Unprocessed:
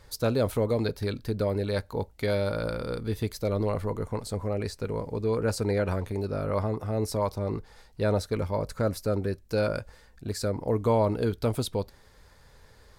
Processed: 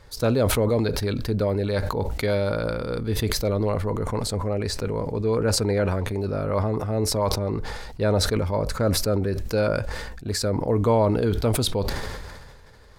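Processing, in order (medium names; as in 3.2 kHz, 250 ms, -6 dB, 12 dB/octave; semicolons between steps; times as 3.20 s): treble shelf 6.9 kHz -7 dB; decay stretcher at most 32 dB/s; trim +3.5 dB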